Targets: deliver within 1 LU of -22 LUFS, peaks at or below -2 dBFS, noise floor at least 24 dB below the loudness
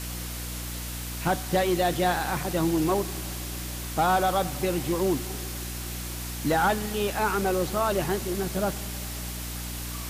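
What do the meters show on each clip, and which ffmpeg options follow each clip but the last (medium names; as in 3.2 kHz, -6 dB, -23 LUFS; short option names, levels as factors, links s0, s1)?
hum 60 Hz; highest harmonic 300 Hz; hum level -34 dBFS; noise floor -35 dBFS; noise floor target -52 dBFS; loudness -27.5 LUFS; peak level -14.0 dBFS; loudness target -22.0 LUFS
-> -af "bandreject=f=60:t=h:w=6,bandreject=f=120:t=h:w=6,bandreject=f=180:t=h:w=6,bandreject=f=240:t=h:w=6,bandreject=f=300:t=h:w=6"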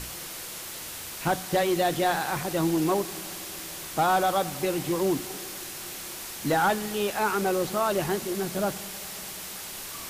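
hum not found; noise floor -39 dBFS; noise floor target -52 dBFS
-> -af "afftdn=nr=13:nf=-39"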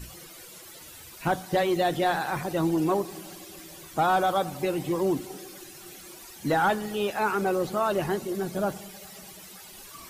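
noise floor -46 dBFS; noise floor target -51 dBFS
-> -af "afftdn=nr=6:nf=-46"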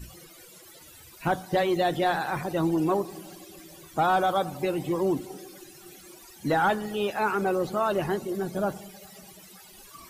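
noise floor -50 dBFS; noise floor target -51 dBFS
-> -af "afftdn=nr=6:nf=-50"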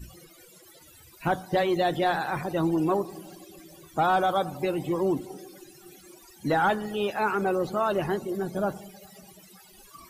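noise floor -53 dBFS; loudness -27.0 LUFS; peak level -15.0 dBFS; loudness target -22.0 LUFS
-> -af "volume=1.78"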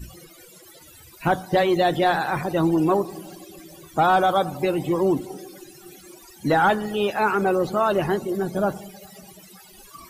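loudness -22.0 LUFS; peak level -10.0 dBFS; noise floor -48 dBFS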